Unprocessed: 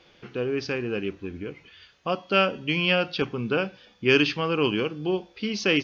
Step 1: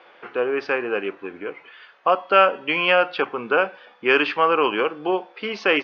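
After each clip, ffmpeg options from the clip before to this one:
-filter_complex "[0:a]lowpass=1400,asplit=2[s0][s1];[s1]alimiter=limit=0.126:level=0:latency=1:release=213,volume=1.19[s2];[s0][s2]amix=inputs=2:normalize=0,highpass=750,volume=2.66"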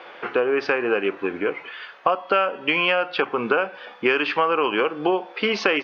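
-af "acompressor=threshold=0.0501:ratio=6,volume=2.66"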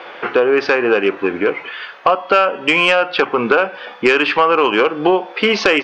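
-af "aeval=exprs='0.794*sin(PI/2*1.78*val(0)/0.794)':c=same,volume=0.891"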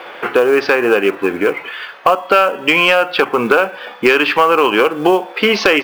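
-af "acrusher=bits=7:mode=log:mix=0:aa=0.000001,volume=1.19"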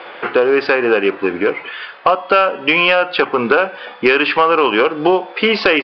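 -af "aresample=11025,aresample=44100,volume=0.891"

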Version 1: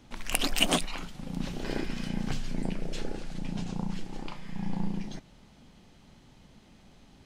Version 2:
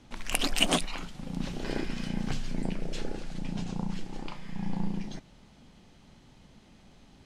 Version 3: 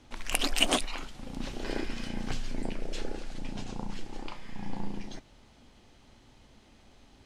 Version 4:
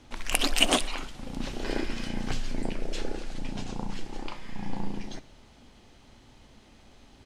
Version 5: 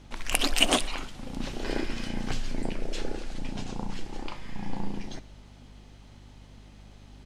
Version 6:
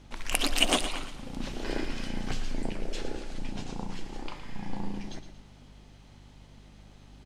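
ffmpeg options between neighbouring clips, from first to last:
-af "lowpass=12000"
-af "equalizer=f=170:w=3.3:g=-13.5"
-af "aecho=1:1:62|124|186|248|310:0.1|0.06|0.036|0.0216|0.013,volume=1.41"
-af "aeval=exprs='val(0)+0.00355*(sin(2*PI*50*n/s)+sin(2*PI*2*50*n/s)/2+sin(2*PI*3*50*n/s)/3+sin(2*PI*4*50*n/s)/4+sin(2*PI*5*50*n/s)/5)':c=same"
-af "aecho=1:1:114|228|342|456:0.282|0.113|0.0451|0.018,volume=0.794"

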